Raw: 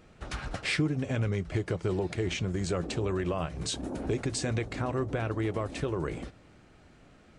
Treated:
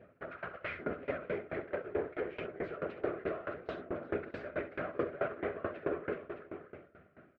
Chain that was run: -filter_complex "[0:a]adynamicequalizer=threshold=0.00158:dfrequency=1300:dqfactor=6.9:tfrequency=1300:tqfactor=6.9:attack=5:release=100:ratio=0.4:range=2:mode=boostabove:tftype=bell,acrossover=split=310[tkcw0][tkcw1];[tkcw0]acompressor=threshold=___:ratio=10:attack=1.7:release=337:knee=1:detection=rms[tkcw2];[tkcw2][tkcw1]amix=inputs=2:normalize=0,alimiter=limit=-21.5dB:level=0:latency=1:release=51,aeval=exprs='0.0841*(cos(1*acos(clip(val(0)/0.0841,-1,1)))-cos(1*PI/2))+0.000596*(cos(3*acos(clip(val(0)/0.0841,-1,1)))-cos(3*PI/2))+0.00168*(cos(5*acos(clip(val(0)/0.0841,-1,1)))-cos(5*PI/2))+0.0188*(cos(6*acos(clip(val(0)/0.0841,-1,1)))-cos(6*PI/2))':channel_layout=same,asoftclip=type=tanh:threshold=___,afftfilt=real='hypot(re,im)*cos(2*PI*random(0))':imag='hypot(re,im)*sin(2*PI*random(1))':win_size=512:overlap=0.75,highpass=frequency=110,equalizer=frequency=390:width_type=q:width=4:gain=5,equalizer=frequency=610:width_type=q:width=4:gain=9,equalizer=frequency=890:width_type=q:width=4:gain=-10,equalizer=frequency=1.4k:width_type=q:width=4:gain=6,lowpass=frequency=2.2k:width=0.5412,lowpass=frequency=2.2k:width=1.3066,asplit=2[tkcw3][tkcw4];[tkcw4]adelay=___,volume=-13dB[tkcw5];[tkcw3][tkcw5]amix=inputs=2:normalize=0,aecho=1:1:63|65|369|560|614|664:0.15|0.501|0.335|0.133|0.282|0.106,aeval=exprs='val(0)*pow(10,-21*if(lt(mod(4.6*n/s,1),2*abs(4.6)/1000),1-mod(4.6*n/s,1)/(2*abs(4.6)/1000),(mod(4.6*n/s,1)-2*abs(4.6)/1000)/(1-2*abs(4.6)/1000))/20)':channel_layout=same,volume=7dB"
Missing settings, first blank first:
-43dB, -26.5dB, 12